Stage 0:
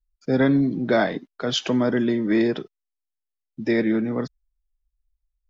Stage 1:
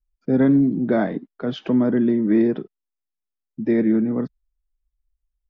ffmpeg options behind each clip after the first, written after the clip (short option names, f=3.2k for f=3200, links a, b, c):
-af "firequalizer=gain_entry='entry(120,0);entry(200,5);entry(540,-2);entry(7300,-27)':delay=0.05:min_phase=1"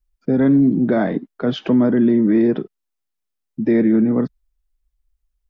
-af "alimiter=level_in=12.5dB:limit=-1dB:release=50:level=0:latency=1,volume=-7dB"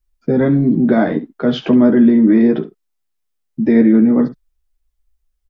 -af "aecho=1:1:13|70:0.596|0.2,volume=2.5dB"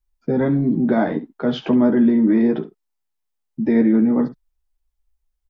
-af "equalizer=f=880:w=3.3:g=6,volume=-5dB"